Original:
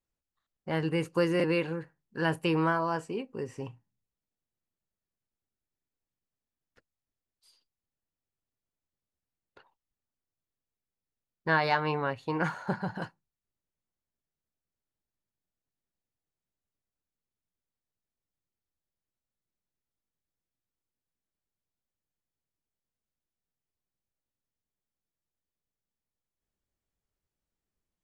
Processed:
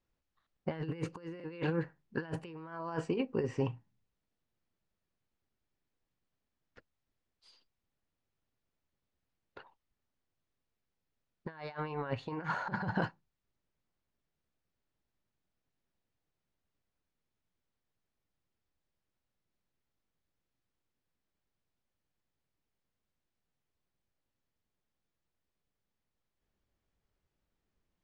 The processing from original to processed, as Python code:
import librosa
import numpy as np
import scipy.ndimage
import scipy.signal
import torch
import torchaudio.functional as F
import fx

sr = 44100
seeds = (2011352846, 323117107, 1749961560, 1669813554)

y = fx.over_compress(x, sr, threshold_db=-35.0, ratio=-0.5)
y = fx.air_absorb(y, sr, metres=130.0)